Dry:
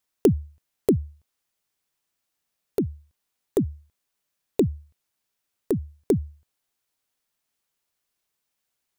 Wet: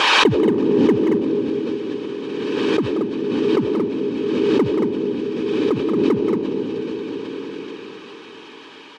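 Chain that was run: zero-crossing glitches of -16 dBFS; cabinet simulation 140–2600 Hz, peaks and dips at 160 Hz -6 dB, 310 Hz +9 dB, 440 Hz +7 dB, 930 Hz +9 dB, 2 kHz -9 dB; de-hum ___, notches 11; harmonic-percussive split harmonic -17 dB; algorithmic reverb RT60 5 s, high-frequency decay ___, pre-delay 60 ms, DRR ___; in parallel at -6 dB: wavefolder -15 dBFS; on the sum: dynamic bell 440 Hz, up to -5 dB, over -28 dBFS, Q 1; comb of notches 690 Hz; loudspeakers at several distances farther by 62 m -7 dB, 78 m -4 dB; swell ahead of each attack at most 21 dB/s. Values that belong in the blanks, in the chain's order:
309.1 Hz, 0.9×, 2 dB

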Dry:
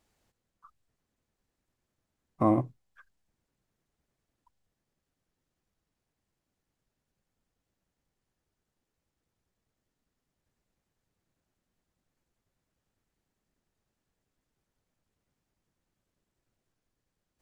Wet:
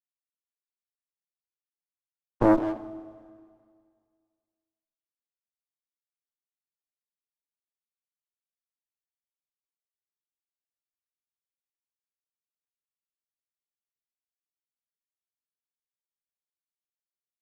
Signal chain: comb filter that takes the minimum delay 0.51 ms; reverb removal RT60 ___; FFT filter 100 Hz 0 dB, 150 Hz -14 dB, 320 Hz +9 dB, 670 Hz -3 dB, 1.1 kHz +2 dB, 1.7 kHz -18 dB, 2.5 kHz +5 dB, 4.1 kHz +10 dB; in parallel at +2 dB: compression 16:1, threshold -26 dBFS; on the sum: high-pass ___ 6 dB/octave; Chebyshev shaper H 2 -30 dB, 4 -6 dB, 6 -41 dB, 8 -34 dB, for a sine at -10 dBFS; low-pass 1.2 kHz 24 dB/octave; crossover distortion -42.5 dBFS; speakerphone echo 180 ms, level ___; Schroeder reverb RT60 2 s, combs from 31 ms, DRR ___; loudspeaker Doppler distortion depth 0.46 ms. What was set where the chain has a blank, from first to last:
1.9 s, 380 Hz, -9 dB, 13.5 dB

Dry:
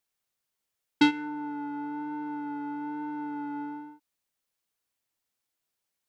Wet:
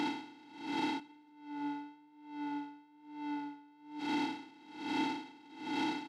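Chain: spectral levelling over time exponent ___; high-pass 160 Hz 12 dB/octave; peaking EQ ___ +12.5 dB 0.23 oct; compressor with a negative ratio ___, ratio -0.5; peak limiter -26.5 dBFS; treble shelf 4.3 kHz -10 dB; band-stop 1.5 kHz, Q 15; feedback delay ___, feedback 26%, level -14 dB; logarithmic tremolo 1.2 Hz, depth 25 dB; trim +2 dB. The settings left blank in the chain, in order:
0.2, 770 Hz, -29 dBFS, 321 ms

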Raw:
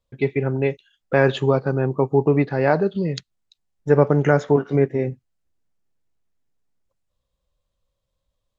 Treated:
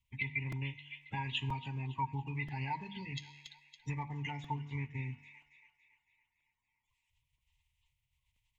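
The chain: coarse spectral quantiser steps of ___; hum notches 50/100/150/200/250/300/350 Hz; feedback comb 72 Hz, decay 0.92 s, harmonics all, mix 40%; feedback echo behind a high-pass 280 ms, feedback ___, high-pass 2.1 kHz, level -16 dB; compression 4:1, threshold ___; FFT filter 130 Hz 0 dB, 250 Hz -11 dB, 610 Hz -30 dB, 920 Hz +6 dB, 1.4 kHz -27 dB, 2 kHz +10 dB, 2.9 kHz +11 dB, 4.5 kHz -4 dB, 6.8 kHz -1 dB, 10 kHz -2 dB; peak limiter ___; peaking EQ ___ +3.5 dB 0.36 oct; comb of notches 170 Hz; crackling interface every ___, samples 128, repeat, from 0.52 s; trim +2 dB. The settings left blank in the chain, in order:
30 dB, 50%, -32 dBFS, -24 dBFS, 1.1 kHz, 0.98 s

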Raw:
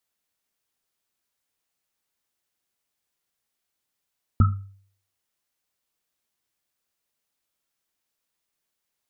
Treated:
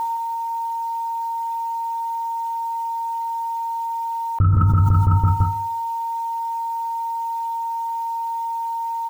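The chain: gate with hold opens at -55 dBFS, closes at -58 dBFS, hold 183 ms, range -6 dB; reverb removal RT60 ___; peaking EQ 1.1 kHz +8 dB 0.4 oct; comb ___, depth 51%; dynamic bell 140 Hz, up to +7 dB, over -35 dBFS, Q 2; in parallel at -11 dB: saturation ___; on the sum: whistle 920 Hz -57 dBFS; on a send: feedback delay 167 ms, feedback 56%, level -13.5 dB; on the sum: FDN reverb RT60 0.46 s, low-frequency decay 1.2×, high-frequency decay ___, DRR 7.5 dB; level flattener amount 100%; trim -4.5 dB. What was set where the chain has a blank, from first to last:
1.3 s, 2 ms, -18.5 dBFS, 0.6×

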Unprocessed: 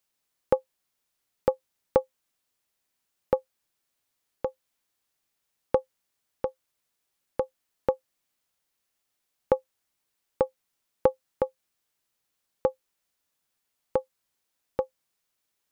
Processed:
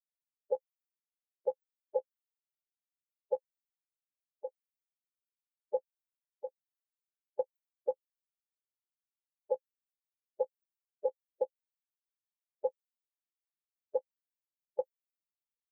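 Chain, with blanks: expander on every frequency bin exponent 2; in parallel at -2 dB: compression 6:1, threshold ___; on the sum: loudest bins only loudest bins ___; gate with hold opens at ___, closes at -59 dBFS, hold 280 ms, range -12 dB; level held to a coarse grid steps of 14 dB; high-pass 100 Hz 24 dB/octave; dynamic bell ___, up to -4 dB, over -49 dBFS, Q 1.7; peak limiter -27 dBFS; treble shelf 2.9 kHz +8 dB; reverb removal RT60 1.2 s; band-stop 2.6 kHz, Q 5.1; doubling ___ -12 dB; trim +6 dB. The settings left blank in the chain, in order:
-31 dBFS, 8, -58 dBFS, 290 Hz, 14 ms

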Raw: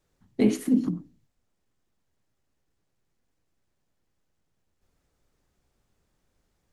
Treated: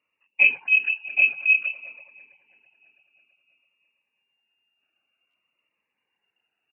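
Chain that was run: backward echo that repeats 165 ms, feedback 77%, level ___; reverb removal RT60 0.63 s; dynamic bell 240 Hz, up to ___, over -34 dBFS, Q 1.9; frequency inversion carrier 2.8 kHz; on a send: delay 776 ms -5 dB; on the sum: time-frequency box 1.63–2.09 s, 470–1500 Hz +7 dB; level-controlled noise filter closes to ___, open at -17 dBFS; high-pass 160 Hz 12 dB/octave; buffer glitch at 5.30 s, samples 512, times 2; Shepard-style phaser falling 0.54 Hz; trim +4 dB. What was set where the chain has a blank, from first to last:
-13 dB, +6 dB, 1.6 kHz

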